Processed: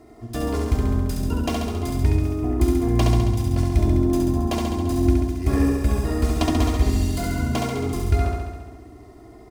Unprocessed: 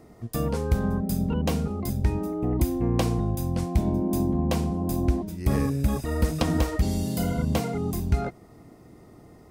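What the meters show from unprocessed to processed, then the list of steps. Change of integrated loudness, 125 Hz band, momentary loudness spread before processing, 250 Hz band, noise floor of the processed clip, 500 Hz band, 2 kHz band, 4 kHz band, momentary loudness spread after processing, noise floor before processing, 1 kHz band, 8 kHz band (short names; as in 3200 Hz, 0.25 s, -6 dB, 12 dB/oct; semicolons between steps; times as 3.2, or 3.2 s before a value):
+4.0 dB, +4.0 dB, 4 LU, +3.5 dB, -45 dBFS, +3.5 dB, +4.5 dB, +4.5 dB, 6 LU, -51 dBFS, +4.0 dB, +3.0 dB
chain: median filter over 3 samples; added harmonics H 8 -31 dB, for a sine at -11 dBFS; comb 2.9 ms, depth 79%; on a send: flutter echo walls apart 11.7 m, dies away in 1.3 s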